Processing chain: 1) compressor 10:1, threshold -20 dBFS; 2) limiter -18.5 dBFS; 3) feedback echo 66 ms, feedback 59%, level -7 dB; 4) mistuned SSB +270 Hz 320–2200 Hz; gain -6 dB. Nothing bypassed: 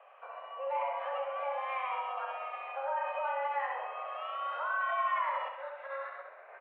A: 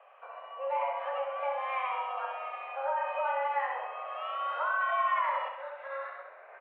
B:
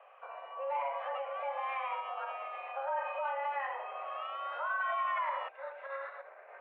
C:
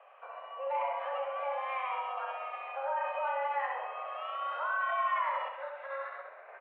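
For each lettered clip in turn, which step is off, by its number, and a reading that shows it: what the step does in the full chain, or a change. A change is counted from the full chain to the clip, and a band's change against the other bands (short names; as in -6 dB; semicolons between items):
2, mean gain reduction 1.5 dB; 3, loudness change -1.5 LU; 1, mean gain reduction 3.0 dB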